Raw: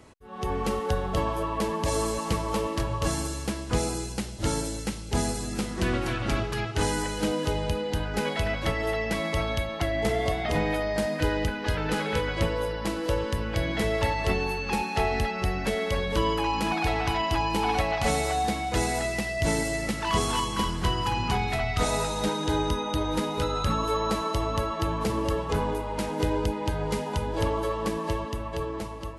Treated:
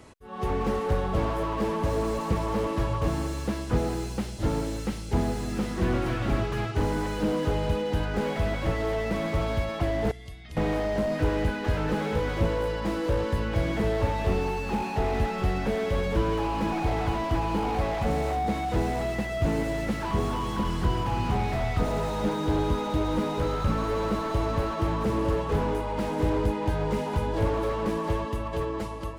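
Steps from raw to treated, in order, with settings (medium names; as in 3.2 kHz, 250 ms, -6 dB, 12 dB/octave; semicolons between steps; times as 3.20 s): 10.11–10.57 s: amplifier tone stack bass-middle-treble 6-0-2; slew-rate limiter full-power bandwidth 27 Hz; trim +2 dB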